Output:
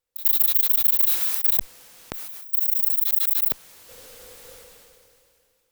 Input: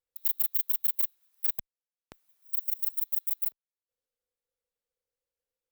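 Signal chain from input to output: decay stretcher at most 23 dB/s; trim +7.5 dB

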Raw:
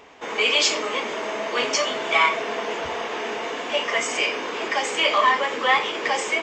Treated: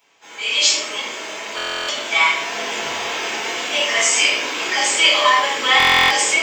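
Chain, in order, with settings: high-pass 77 Hz; pre-emphasis filter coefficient 0.9; level rider gain up to 15 dB; reverberation RT60 0.60 s, pre-delay 6 ms, DRR -6.5 dB; buffer glitch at 1.56/5.78 s, samples 1024, times 13; trim -6.5 dB

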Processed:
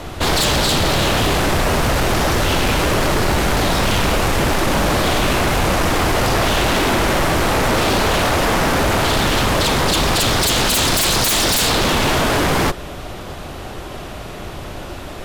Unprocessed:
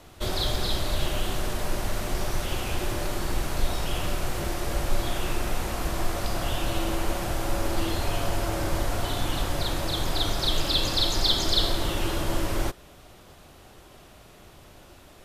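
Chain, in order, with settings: treble shelf 4.8 kHz -8 dB; sine folder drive 19 dB, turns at -10.5 dBFS; trim -2.5 dB

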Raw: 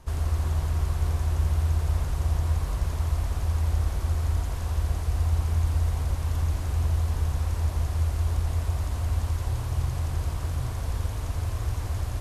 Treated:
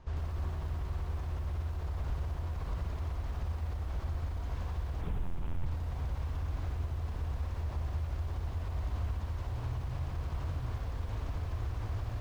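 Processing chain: peak limiter -24 dBFS, peak gain reduction 10 dB; distance through air 160 m; 5.01–5.66 s: LPC vocoder at 8 kHz pitch kept; bit-crushed delay 92 ms, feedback 35%, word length 9-bit, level -7 dB; trim -4 dB

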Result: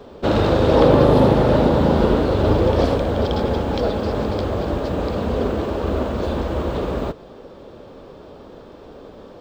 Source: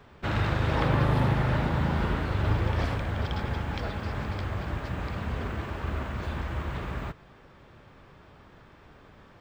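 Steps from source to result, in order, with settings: graphic EQ 125/250/500/2000/4000 Hz -5/+6/+12/-9/+5 dB; trim +7.5 dB

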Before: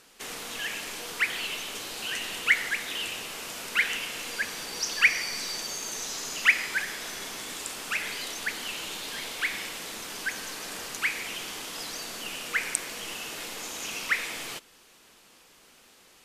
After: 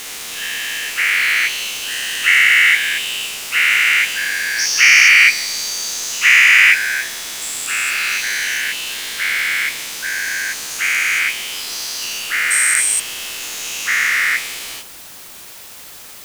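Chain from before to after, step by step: every event in the spectrogram widened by 480 ms; tilt shelf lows -6 dB, about 1.3 kHz; de-hum 99.55 Hz, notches 13; word length cut 6-bit, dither triangular; trim -1 dB

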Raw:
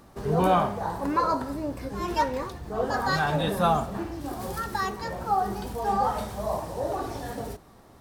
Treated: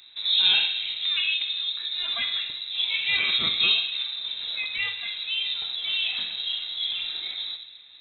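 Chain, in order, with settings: dynamic bell 1 kHz, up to +5 dB, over -34 dBFS, Q 1; static phaser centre 2.2 kHz, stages 4; reverberation RT60 1.2 s, pre-delay 33 ms, DRR 8.5 dB; frequency inversion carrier 3.9 kHz; trim +3 dB

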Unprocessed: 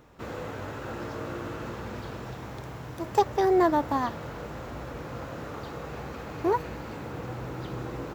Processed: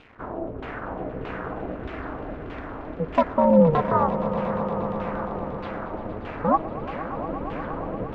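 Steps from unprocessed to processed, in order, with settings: bit crusher 9-bit; LFO low-pass saw down 1.6 Hz 230–3000 Hz; on a send: echo with a slow build-up 117 ms, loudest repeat 5, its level -15 dB; on the sum: ring modulator 160 Hz; trim +4 dB

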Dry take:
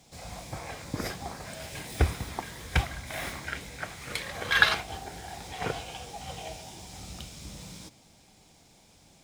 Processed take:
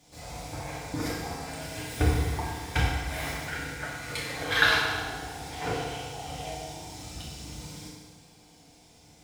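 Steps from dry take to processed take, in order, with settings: FDN reverb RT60 1.5 s, low-frequency decay 0.95×, high-frequency decay 0.85×, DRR -5.5 dB; trim -4.5 dB

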